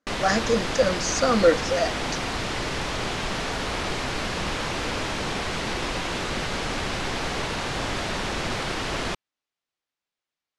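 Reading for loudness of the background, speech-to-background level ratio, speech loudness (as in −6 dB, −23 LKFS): −28.0 LKFS, 4.5 dB, −23.5 LKFS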